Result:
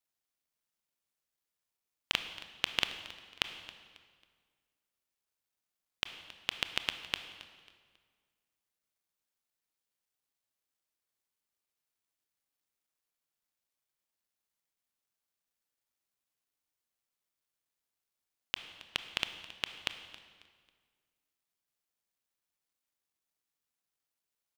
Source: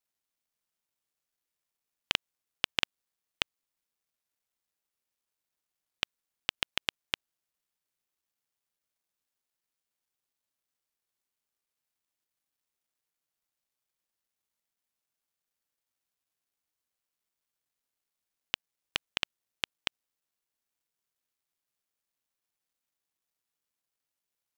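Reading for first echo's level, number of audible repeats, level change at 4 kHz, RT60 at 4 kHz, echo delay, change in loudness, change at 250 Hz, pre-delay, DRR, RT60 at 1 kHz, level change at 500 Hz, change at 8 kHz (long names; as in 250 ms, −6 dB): −18.0 dB, 2, −1.5 dB, 1.5 s, 272 ms, −1.5 dB, −1.5 dB, 23 ms, 8.5 dB, 1.7 s, −1.5 dB, −1.5 dB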